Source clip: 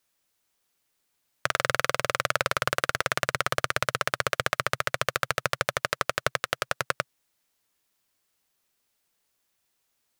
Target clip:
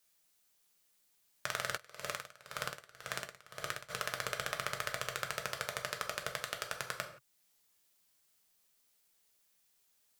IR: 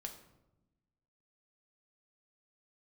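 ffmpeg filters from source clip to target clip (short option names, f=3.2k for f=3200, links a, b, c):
-filter_complex "[0:a]highshelf=f=3.4k:g=7.5,alimiter=limit=-7.5dB:level=0:latency=1:release=437[a];[1:a]atrim=start_sample=2205,afade=t=out:st=0.23:d=0.01,atrim=end_sample=10584[b];[a][b]afir=irnorm=-1:irlink=0,asplit=3[c][d][e];[c]afade=t=out:st=1.76:d=0.02[f];[d]aeval=exprs='val(0)*pow(10,-23*(0.5-0.5*cos(2*PI*1.9*n/s))/20)':c=same,afade=t=in:st=1.76:d=0.02,afade=t=out:st=3.89:d=0.02[g];[e]afade=t=in:st=3.89:d=0.02[h];[f][g][h]amix=inputs=3:normalize=0"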